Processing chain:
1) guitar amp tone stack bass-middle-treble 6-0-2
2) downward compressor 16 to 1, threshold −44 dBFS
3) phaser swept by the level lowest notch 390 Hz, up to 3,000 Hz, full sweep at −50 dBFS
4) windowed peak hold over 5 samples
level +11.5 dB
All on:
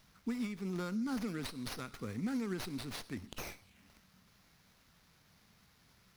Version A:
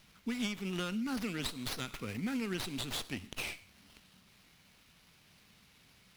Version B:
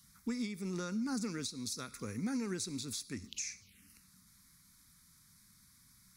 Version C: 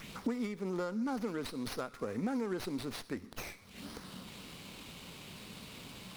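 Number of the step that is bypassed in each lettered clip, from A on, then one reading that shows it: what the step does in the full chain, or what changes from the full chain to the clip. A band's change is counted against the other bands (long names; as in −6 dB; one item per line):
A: 3, 4 kHz band +6.5 dB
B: 4, distortion level −7 dB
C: 1, 500 Hz band +5.5 dB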